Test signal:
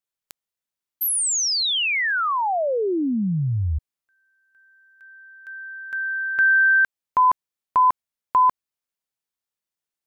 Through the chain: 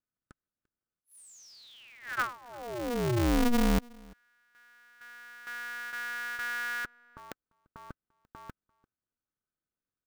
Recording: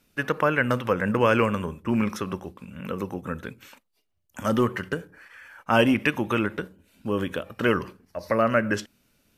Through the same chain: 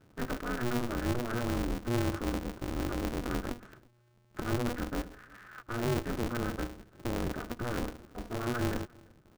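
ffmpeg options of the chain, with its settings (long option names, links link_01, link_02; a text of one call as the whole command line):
ffmpeg -i in.wav -filter_complex "[0:a]areverse,acompressor=threshold=-33dB:ratio=4:attack=0.94:release=77:knee=1:detection=peak,areverse,bandreject=frequency=1500:width=11,asplit=2[link_01][link_02];[link_02]adelay=344,volume=-26dB,highshelf=frequency=4000:gain=-7.74[link_03];[link_01][link_03]amix=inputs=2:normalize=0,aresample=22050,aresample=44100,firequalizer=gain_entry='entry(150,0);entry(970,-30);entry(1400,0);entry(2000,-30)':delay=0.05:min_phase=1,aeval=exprs='val(0)*sgn(sin(2*PI*120*n/s))':channel_layout=same,volume=8.5dB" out.wav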